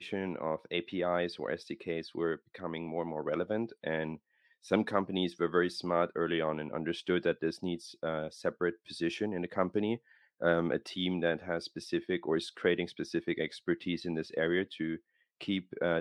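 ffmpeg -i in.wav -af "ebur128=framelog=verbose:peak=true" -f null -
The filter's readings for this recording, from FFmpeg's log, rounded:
Integrated loudness:
  I:         -34.1 LUFS
  Threshold: -44.2 LUFS
Loudness range:
  LRA:         3.2 LU
  Threshold: -54.0 LUFS
  LRA low:   -35.8 LUFS
  LRA high:  -32.6 LUFS
True peak:
  Peak:      -12.2 dBFS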